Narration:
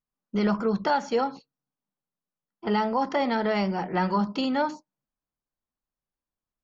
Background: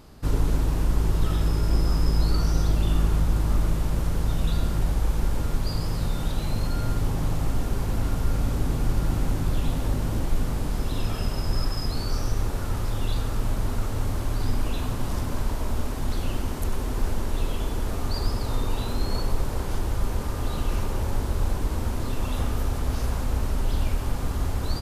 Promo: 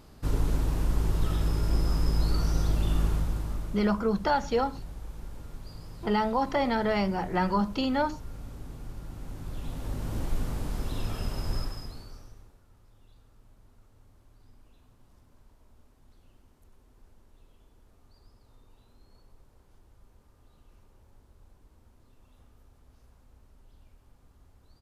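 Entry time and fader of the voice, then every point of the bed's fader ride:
3.40 s, -1.5 dB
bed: 3.07 s -4 dB
3.99 s -17 dB
9.13 s -17 dB
10.22 s -5.5 dB
11.56 s -5.5 dB
12.63 s -32.5 dB

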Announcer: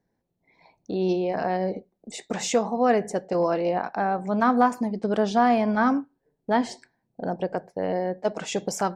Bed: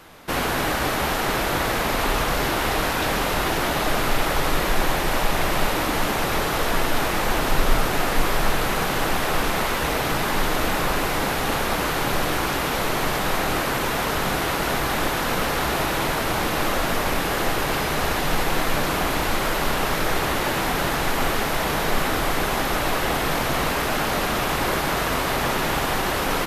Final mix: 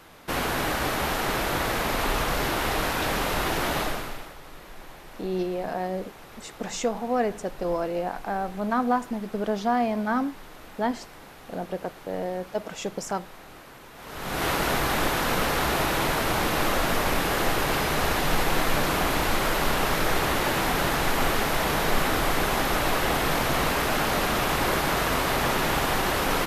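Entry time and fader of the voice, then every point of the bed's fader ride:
4.30 s, -4.0 dB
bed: 3.8 s -3.5 dB
4.37 s -23 dB
13.93 s -23 dB
14.45 s -1.5 dB

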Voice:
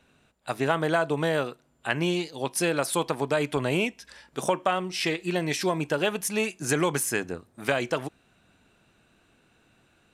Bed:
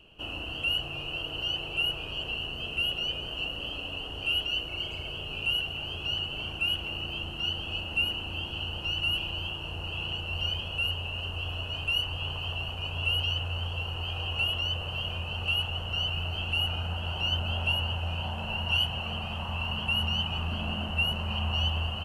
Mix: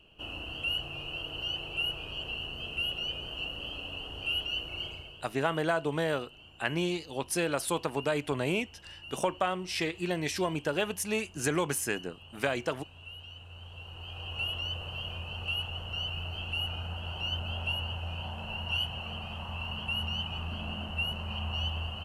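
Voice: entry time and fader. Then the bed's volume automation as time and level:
4.75 s, -4.5 dB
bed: 4.86 s -3.5 dB
5.34 s -18.5 dB
13.29 s -18.5 dB
14.46 s -5 dB

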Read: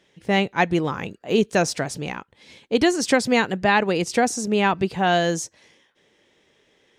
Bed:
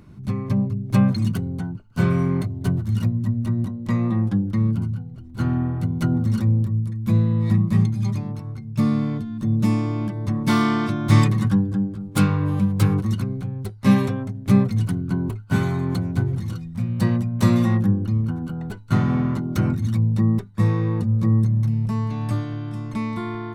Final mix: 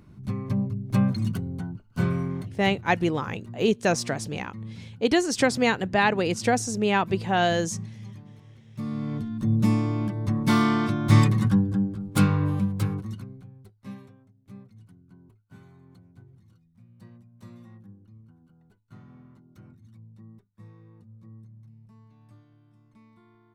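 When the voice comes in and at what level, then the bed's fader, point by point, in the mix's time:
2.30 s, -3.0 dB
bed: 2.02 s -5 dB
3.01 s -18 dB
8.66 s -18 dB
9.24 s -2 dB
12.43 s -2 dB
14.23 s -29.5 dB

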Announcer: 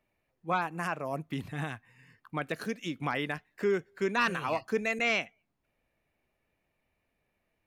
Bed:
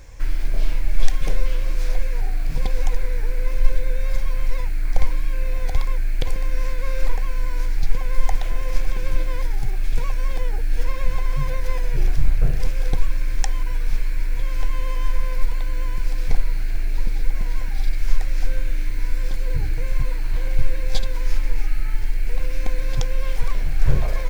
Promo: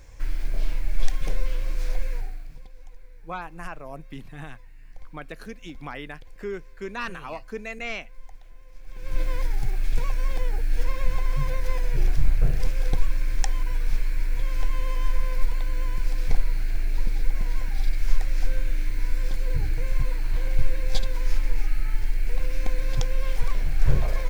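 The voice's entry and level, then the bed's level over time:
2.80 s, -4.5 dB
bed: 2.13 s -5 dB
2.69 s -25 dB
8.77 s -25 dB
9.21 s -2.5 dB

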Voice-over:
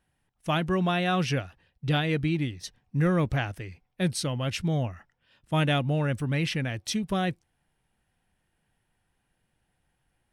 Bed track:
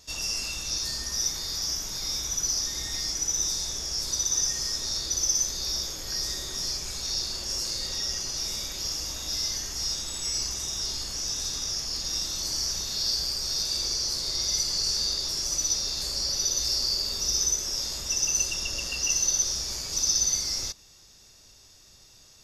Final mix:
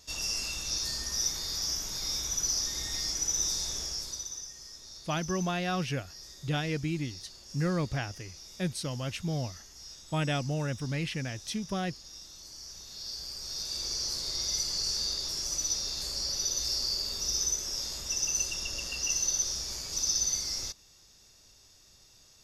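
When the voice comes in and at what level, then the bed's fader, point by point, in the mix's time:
4.60 s, -5.5 dB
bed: 3.82 s -2.5 dB
4.48 s -17.5 dB
12.55 s -17.5 dB
14.01 s -4.5 dB

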